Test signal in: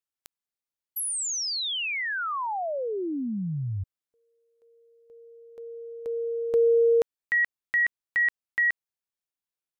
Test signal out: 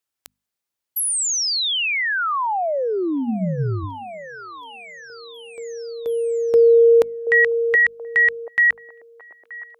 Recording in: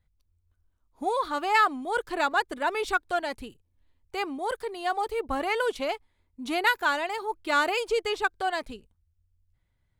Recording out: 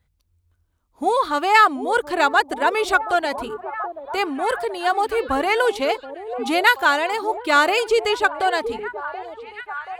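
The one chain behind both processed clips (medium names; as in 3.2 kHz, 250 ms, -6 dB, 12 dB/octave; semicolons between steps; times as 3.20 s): high-pass 43 Hz; hum notches 50/100/150/200/250 Hz; repeats whose band climbs or falls 729 ms, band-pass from 480 Hz, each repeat 0.7 oct, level -9 dB; trim +8 dB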